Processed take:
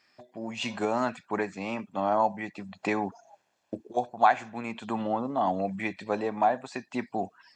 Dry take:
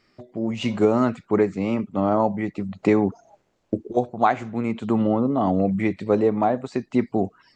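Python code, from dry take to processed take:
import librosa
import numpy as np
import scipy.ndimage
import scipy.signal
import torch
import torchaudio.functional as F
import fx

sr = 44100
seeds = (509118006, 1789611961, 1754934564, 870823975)

y = fx.highpass(x, sr, hz=890.0, slope=6)
y = y + 0.44 * np.pad(y, (int(1.2 * sr / 1000.0), 0))[:len(y)]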